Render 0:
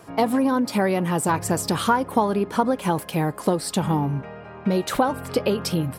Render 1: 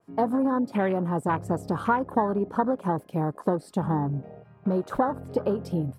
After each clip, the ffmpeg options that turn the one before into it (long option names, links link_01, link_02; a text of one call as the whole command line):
ffmpeg -i in.wav -af "afwtdn=0.0355,adynamicequalizer=threshold=0.0126:dfrequency=2100:dqfactor=0.7:tfrequency=2100:tqfactor=0.7:attack=5:release=100:ratio=0.375:range=1.5:mode=cutabove:tftype=highshelf,volume=-3.5dB" out.wav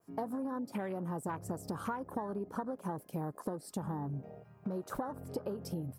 ffmpeg -i in.wav -af "aexciter=amount=3.5:drive=2.9:freq=5000,acompressor=threshold=-29dB:ratio=6,volume=-5.5dB" out.wav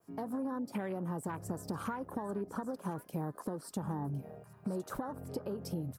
ffmpeg -i in.wav -filter_complex "[0:a]acrossover=split=370|1300[link_01][link_02][link_03];[link_02]alimiter=level_in=12.5dB:limit=-24dB:level=0:latency=1,volume=-12.5dB[link_04];[link_03]aecho=1:1:1059:0.266[link_05];[link_01][link_04][link_05]amix=inputs=3:normalize=0,volume=1dB" out.wav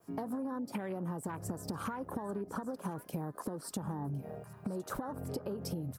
ffmpeg -i in.wav -af "acompressor=threshold=-40dB:ratio=6,volume=5.5dB" out.wav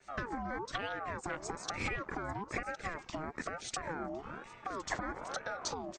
ffmpeg -i in.wav -af "aresample=16000,aresample=44100,tiltshelf=frequency=750:gain=-6.5,aeval=exprs='val(0)*sin(2*PI*770*n/s+770*0.4/1.1*sin(2*PI*1.1*n/s))':channel_layout=same,volume=5dB" out.wav